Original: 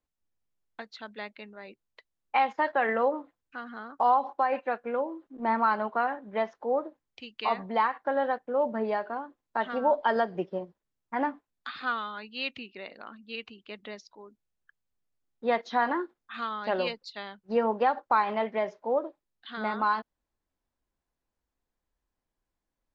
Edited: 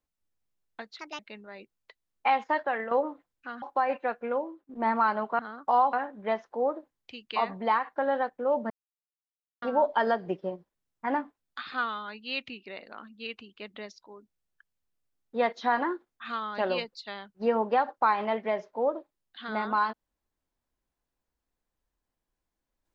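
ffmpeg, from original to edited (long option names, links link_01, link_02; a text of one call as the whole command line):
ffmpeg -i in.wav -filter_complex "[0:a]asplit=10[link_01][link_02][link_03][link_04][link_05][link_06][link_07][link_08][link_09][link_10];[link_01]atrim=end=0.994[link_11];[link_02]atrim=start=0.99:end=1.28,asetpts=PTS-STARTPTS,asetrate=63504,aresample=44100,atrim=end_sample=8881,asetpts=PTS-STARTPTS[link_12];[link_03]atrim=start=1.276:end=3,asetpts=PTS-STARTPTS,afade=type=out:start_time=1.334:duration=0.39:silence=0.316228[link_13];[link_04]atrim=start=3:end=3.712,asetpts=PTS-STARTPTS,afade=type=in:duration=0.004:curve=hsin:silence=0.316228[link_14];[link_05]atrim=start=4.248:end=5.32,asetpts=PTS-STARTPTS,afade=type=out:start_time=0.772:duration=0.3:silence=0.199526[link_15];[link_06]atrim=start=5.32:end=6.022,asetpts=PTS-STARTPTS,afade=type=in:duration=0.004:curve=hsin:silence=0.199526[link_16];[link_07]atrim=start=3.708:end=4.252[link_17];[link_08]atrim=start=6.018:end=8.79,asetpts=PTS-STARTPTS,afade=type=out:start_time=2.768:duration=0.004:curve=hsin[link_18];[link_09]atrim=start=8.79:end=9.71,asetpts=PTS-STARTPTS,volume=0[link_19];[link_10]atrim=start=9.71,asetpts=PTS-STARTPTS,afade=type=in:duration=0.004:curve=hsin[link_20];[link_11][link_12]acrossfade=duration=0.004:curve1=hsin:curve2=hsin[link_21];[link_13][link_14]concat=n=2:v=0:a=1[link_22];[link_21][link_22]acrossfade=duration=0.004:curve1=hsin:curve2=hsin[link_23];[link_15][link_16]concat=n=2:v=0:a=1[link_24];[link_23][link_24]acrossfade=duration=0.004:curve1=hsin:curve2=hsin[link_25];[link_25][link_17]acrossfade=duration=0.004:curve1=hsin:curve2=hsin[link_26];[link_18][link_19][link_20]concat=n=3:v=0:a=1[link_27];[link_26][link_27]acrossfade=duration=0.004:curve1=hsin:curve2=hsin" out.wav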